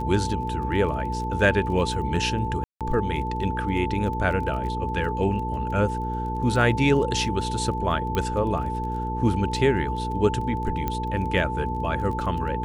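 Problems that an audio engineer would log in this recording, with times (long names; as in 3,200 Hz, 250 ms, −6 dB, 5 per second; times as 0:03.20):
surface crackle 18 per second −33 dBFS
mains hum 60 Hz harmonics 8 −30 dBFS
whistle 880 Hz −29 dBFS
0:02.64–0:02.81: drop-out 167 ms
0:08.15: click −13 dBFS
0:10.88: click −13 dBFS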